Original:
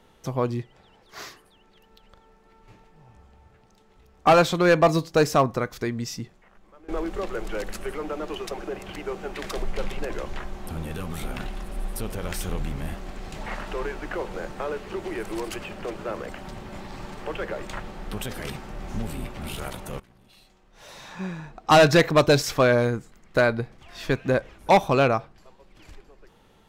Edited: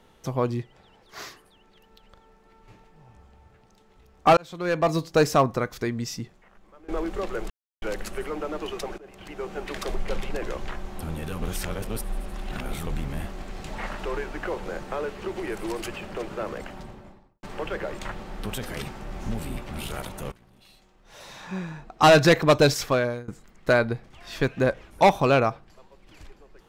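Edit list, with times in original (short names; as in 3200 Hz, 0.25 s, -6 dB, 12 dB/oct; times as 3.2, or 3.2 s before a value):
4.37–5.16 fade in
7.5 insert silence 0.32 s
8.66–9.24 fade in, from -20 dB
11.1–12.55 reverse
16.24–17.11 studio fade out
22.44–22.96 fade out, to -23 dB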